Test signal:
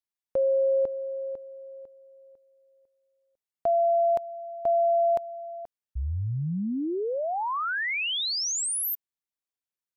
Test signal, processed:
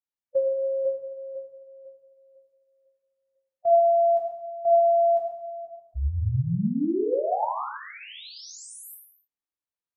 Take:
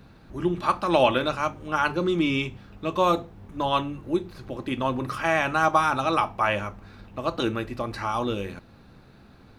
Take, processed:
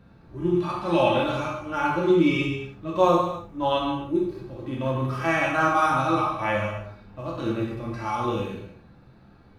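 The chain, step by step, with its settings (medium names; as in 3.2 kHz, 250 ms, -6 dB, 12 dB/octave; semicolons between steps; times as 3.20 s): harmonic-percussive split percussive -16 dB; gated-style reverb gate 340 ms falling, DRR -2 dB; tape noise reduction on one side only decoder only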